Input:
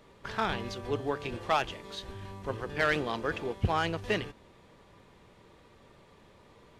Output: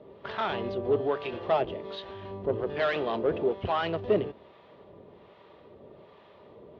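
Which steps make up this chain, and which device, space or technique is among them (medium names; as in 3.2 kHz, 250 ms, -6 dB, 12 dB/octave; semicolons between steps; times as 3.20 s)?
guitar amplifier with harmonic tremolo (harmonic tremolo 1.2 Hz, depth 70%, crossover 720 Hz; saturation -29 dBFS, distortion -10 dB; cabinet simulation 91–3500 Hz, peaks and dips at 120 Hz -3 dB, 400 Hz +7 dB, 620 Hz +8 dB, 1.6 kHz -5 dB, 2.3 kHz -5 dB); trim +6.5 dB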